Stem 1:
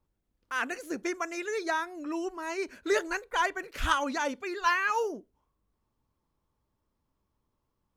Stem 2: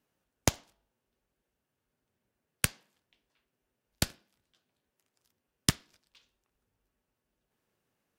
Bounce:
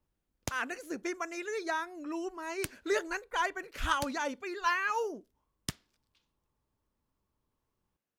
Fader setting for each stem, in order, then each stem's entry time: -3.5, -11.0 dB; 0.00, 0.00 s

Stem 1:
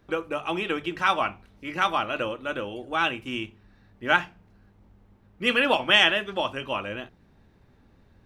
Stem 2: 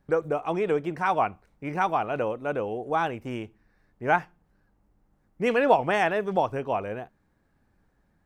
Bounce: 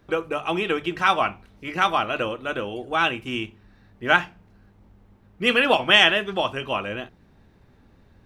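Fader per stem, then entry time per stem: +3.0, -12.0 dB; 0.00, 0.00 s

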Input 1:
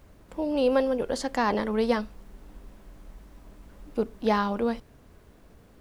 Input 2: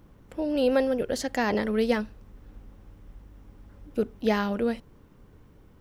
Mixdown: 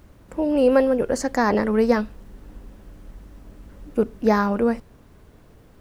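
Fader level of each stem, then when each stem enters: +1.5, 0.0 dB; 0.00, 0.00 s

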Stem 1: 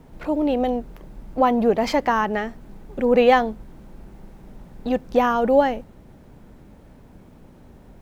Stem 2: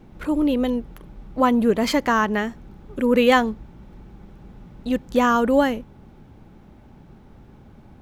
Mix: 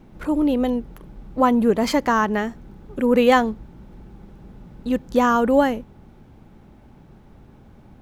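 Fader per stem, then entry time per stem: -11.0, -1.0 dB; 0.00, 0.00 s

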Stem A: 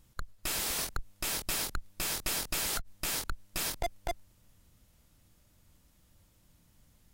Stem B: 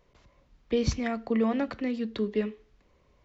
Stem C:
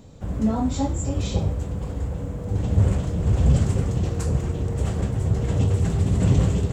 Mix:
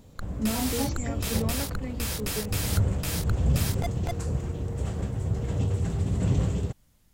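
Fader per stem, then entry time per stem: 0.0, -7.0, -6.0 dB; 0.00, 0.00, 0.00 s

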